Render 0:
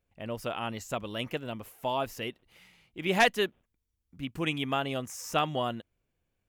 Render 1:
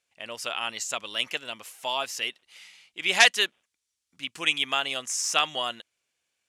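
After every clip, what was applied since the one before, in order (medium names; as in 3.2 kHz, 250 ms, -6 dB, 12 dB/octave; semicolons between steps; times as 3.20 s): frequency weighting ITU-R 468; trim +1.5 dB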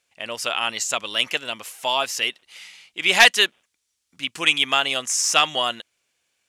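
saturation -8.5 dBFS, distortion -15 dB; trim +7 dB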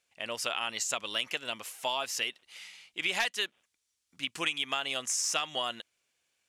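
compression 6:1, threshold -22 dBFS, peak gain reduction 13.5 dB; trim -5.5 dB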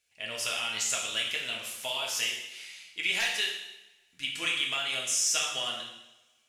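ten-band graphic EQ 250 Hz -6 dB, 500 Hz -5 dB, 1 kHz -9 dB; two-slope reverb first 0.89 s, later 2.5 s, from -27 dB, DRR -2.5 dB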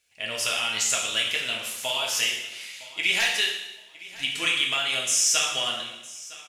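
feedback delay 960 ms, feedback 26%, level -19 dB; trim +5.5 dB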